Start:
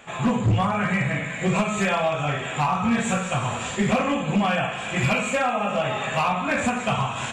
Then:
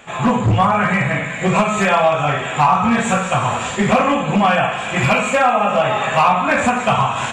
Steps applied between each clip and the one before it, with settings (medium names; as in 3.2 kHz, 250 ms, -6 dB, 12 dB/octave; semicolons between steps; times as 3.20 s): dynamic bell 980 Hz, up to +6 dB, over -35 dBFS, Q 0.77; trim +4.5 dB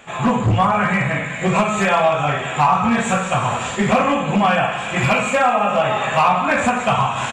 delay 169 ms -17 dB; trim -1.5 dB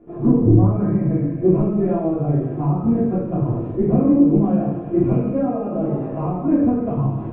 resonant low-pass 340 Hz, resonance Q 3.7; reverberation RT60 0.50 s, pre-delay 3 ms, DRR -4 dB; trim -5 dB